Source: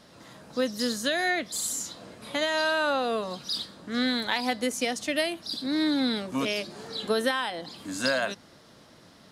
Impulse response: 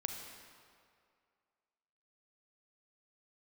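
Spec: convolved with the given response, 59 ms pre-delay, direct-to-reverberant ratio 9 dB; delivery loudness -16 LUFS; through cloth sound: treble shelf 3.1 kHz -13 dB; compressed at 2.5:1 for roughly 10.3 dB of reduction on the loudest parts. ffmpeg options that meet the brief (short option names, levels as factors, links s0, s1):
-filter_complex "[0:a]acompressor=threshold=0.0126:ratio=2.5,asplit=2[s0][s1];[1:a]atrim=start_sample=2205,adelay=59[s2];[s1][s2]afir=irnorm=-1:irlink=0,volume=0.335[s3];[s0][s3]amix=inputs=2:normalize=0,highshelf=f=3100:g=-13,volume=14.1"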